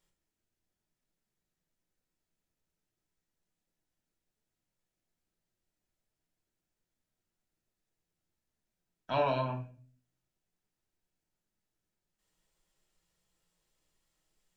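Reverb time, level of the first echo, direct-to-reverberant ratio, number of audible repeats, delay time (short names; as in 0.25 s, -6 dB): 0.45 s, none, 2.5 dB, none, none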